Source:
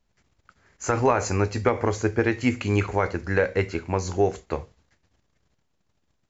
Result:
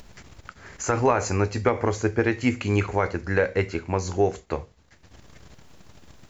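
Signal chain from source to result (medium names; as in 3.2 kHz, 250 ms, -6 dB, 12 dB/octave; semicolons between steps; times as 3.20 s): upward compressor, threshold -28 dBFS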